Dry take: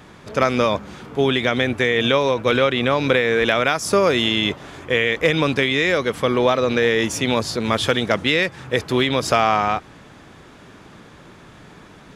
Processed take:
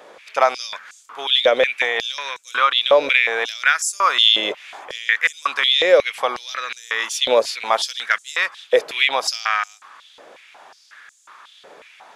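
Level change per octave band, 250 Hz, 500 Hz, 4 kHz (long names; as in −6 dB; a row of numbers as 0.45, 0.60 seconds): −17.5, −1.5, +4.5 decibels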